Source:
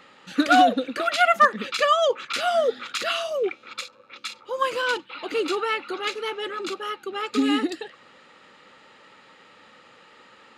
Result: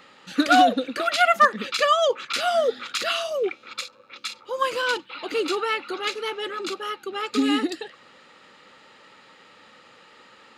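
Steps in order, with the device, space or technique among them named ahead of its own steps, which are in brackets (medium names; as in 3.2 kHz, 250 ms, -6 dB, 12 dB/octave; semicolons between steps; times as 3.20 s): presence and air boost (peaking EQ 4.7 kHz +2.5 dB; treble shelf 10 kHz +4.5 dB)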